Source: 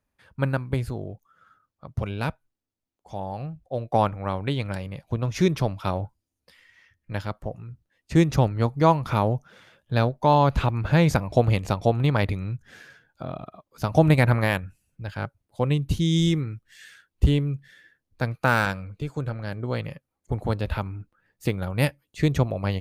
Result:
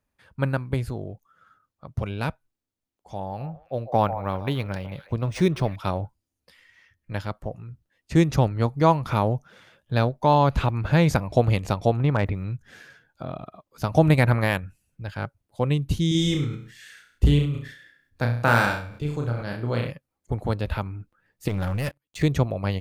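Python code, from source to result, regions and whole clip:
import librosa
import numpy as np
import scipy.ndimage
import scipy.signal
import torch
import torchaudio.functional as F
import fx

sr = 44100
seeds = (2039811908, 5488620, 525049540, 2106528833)

y = fx.chain(x, sr, fx.echo_stepped(ms=146, hz=720.0, octaves=1.4, feedback_pct=70, wet_db=-9),
    fx.resample_linear(factor=3), at=(3.25, 5.76))
y = fx.chain(y, sr, fx.lowpass(hz=2300.0, slope=12),
    fx.clip_hard(threshold_db=-11.0),
    fx.quant_dither(seeds[0], bits=12, dither='none'), at=(11.97, 12.44))
y = fx.chain(y, sr, fx.room_flutter(wall_m=5.8, rt60_s=0.43),
    fx.sustainer(db_per_s=96.0), at=(16.08, 19.91))
y = fx.chain(y, sr, fx.level_steps(step_db=16),
    fx.leveller(passes=3), at=(21.48, 22.23))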